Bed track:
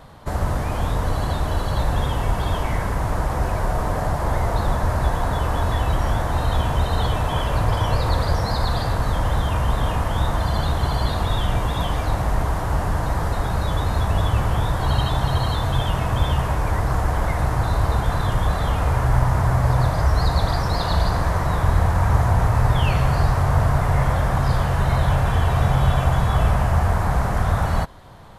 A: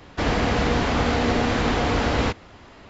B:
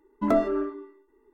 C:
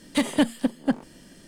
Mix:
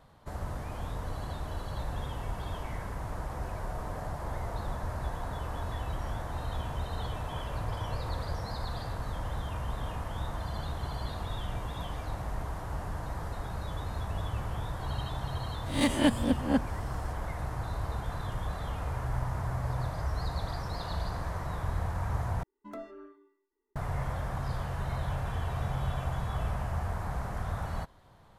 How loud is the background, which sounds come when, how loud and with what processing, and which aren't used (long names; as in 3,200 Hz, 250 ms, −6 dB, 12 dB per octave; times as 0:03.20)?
bed track −14.5 dB
0:15.66: mix in C −5 dB + peak hold with a rise ahead of every peak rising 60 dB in 0.41 s
0:22.43: overwrite with B −18 dB + tilt shelving filter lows −4 dB, about 1,400 Hz
not used: A